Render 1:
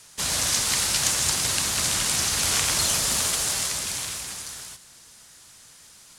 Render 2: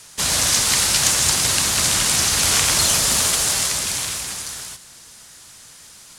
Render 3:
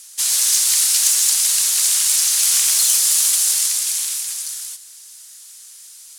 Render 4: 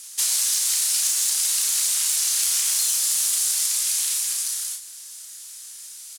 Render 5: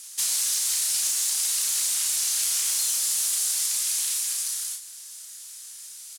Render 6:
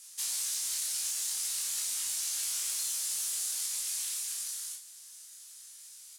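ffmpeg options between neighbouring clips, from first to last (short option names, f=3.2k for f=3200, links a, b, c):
-af "acontrast=55"
-af "aeval=exprs='0.75*sin(PI/2*1.41*val(0)/0.75)':c=same,aderivative,acrusher=bits=9:mix=0:aa=0.000001,volume=-3.5dB"
-filter_complex "[0:a]acompressor=threshold=-20dB:ratio=6,asplit=2[a][b];[b]adelay=33,volume=-5dB[c];[a][c]amix=inputs=2:normalize=0"
-af "asoftclip=type=tanh:threshold=-14dB,volume=-2dB"
-af "flanger=delay=18.5:depth=3.6:speed=0.38,volume=-5.5dB"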